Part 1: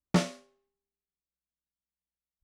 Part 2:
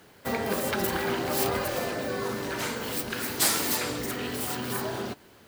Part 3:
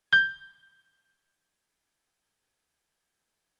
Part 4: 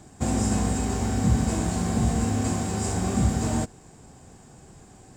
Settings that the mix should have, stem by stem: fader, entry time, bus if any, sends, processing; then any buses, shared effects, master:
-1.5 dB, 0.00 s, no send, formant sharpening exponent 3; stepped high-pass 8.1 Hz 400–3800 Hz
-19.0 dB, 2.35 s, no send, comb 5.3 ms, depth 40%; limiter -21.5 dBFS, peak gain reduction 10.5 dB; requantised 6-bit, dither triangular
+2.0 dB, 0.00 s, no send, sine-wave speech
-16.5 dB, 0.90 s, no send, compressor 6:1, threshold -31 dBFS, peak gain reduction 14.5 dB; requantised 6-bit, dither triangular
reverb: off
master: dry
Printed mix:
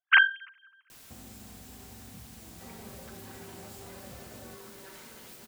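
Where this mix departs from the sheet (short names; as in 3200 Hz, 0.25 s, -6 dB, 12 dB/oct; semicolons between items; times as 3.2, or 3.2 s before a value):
stem 1: muted; stem 2: missing requantised 6-bit, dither triangular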